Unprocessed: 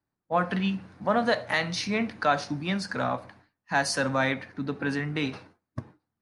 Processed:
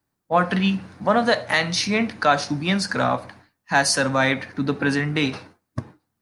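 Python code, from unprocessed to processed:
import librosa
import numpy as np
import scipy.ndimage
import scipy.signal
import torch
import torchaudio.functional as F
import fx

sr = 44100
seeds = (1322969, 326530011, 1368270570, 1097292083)

p1 = fx.high_shelf(x, sr, hz=5000.0, db=6.5)
p2 = fx.rider(p1, sr, range_db=10, speed_s=0.5)
y = p1 + (p2 * 10.0 ** (0.0 / 20.0))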